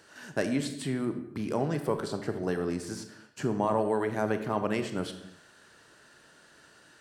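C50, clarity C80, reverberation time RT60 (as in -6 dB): 10.0 dB, 12.0 dB, no single decay rate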